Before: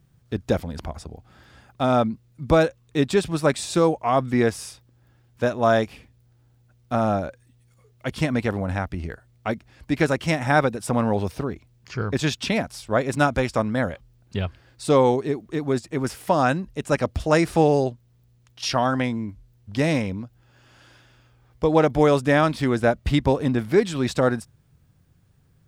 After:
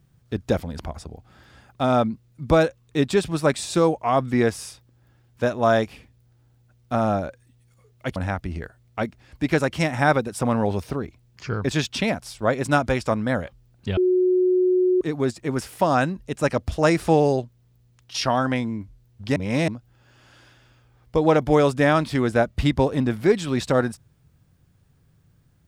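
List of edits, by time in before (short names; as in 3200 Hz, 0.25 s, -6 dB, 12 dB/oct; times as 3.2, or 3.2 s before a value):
8.16–8.64 cut
14.45–15.49 bleep 366 Hz -15.5 dBFS
19.84–20.16 reverse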